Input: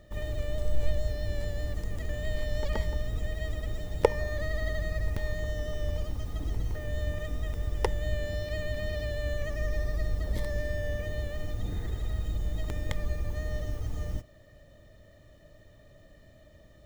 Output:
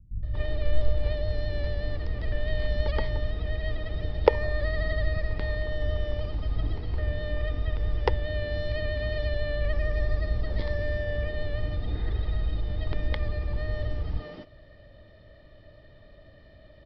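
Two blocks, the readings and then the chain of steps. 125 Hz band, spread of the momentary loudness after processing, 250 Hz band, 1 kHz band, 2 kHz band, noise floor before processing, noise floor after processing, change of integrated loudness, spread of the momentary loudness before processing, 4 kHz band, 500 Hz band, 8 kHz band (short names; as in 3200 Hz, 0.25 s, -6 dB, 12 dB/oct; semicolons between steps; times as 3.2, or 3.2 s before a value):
+3.0 dB, 4 LU, +1.5 dB, +3.5 dB, +3.5 dB, -56 dBFS, -52 dBFS, +3.5 dB, 4 LU, +3.5 dB, +3.5 dB, n/a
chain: bands offset in time lows, highs 0.23 s, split 190 Hz; downsampling 11025 Hz; gain +3.5 dB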